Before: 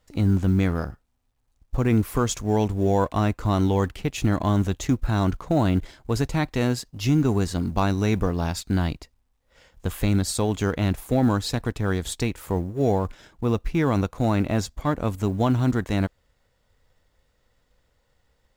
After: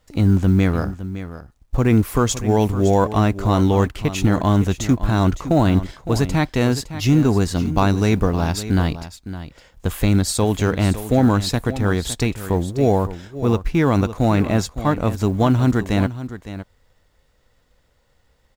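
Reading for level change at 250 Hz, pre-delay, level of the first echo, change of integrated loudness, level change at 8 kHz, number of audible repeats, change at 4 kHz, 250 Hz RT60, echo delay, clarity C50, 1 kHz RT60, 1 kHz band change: +5.0 dB, none, -13.0 dB, +5.0 dB, +5.0 dB, 1, +5.0 dB, none, 0.561 s, none, none, +5.0 dB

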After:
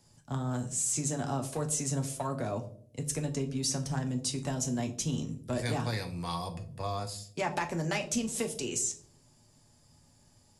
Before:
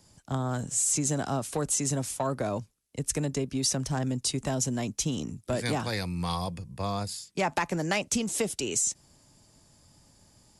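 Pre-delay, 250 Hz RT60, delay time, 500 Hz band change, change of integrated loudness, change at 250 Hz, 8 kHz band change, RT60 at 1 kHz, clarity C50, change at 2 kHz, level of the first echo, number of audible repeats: 7 ms, 0.80 s, none, -4.0 dB, -3.5 dB, -3.0 dB, -4.5 dB, 0.40 s, 14.0 dB, -4.5 dB, none, none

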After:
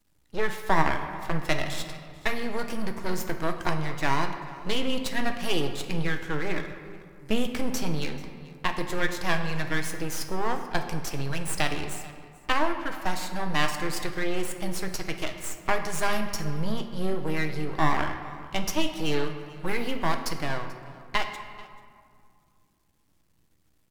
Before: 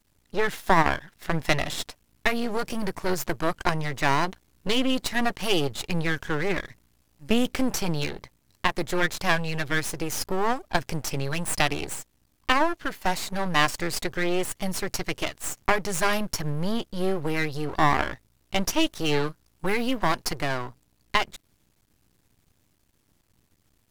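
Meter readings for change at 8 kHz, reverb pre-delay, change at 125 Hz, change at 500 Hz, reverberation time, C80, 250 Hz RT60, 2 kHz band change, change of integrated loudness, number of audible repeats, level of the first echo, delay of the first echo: -4.0 dB, 6 ms, -1.5 dB, -3.0 dB, 2.2 s, 9.0 dB, 2.9 s, -3.0 dB, -3.0 dB, 1, -21.0 dB, 0.437 s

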